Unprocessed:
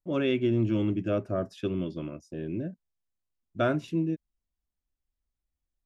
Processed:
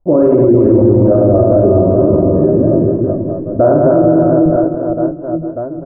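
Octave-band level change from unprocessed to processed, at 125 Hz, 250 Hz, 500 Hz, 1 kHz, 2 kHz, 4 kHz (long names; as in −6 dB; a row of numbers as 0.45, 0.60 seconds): +19.0 dB, +19.5 dB, +23.0 dB, +19.5 dB, can't be measured, below −25 dB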